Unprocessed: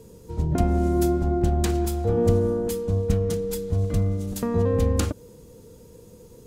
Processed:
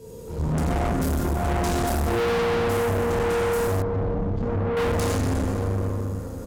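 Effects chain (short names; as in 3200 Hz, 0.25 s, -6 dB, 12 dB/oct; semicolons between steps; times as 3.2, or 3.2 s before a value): 0.81–1.25 HPF 530 Hz 12 dB/oct; feedback echo 91 ms, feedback 59%, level -13 dB; plate-style reverb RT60 3.6 s, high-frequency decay 0.45×, DRR -9 dB; one-sided clip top -32 dBFS, bottom -17 dBFS; 3.82–4.77 tape spacing loss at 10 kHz 41 dB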